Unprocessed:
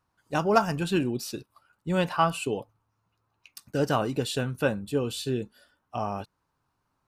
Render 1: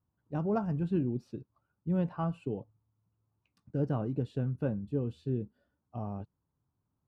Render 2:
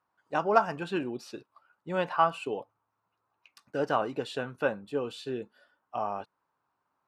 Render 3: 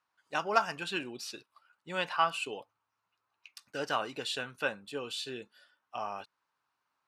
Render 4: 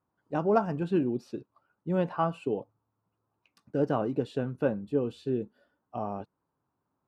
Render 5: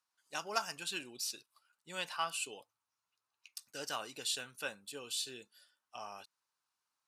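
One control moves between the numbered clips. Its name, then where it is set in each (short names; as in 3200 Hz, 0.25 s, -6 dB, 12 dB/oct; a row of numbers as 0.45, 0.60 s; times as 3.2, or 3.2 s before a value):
band-pass, frequency: 110, 940, 2400, 330, 6900 Hz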